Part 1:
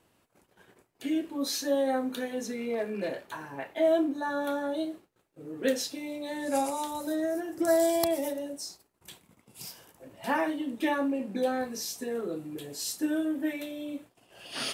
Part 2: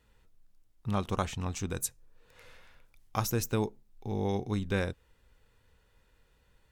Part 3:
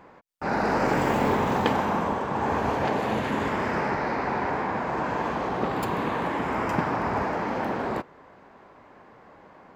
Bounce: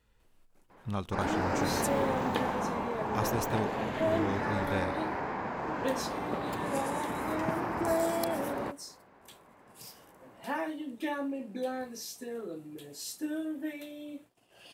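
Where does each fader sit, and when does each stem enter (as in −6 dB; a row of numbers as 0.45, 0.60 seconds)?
−6.0, −3.5, −7.5 decibels; 0.20, 0.00, 0.70 seconds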